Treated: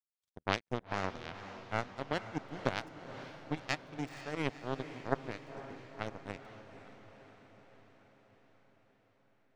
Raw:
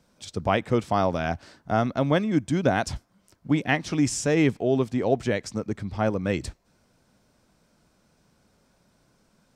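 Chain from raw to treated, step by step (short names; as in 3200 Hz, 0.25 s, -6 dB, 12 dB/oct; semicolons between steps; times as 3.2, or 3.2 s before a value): power-law curve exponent 3; diffused feedback echo 0.494 s, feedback 64%, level -11.5 dB; gain -2 dB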